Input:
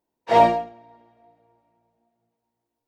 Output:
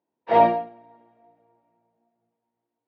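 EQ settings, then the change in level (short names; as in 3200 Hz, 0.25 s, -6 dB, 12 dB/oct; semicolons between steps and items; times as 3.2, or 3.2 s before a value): HPF 140 Hz 12 dB/oct; air absorption 340 m; 0.0 dB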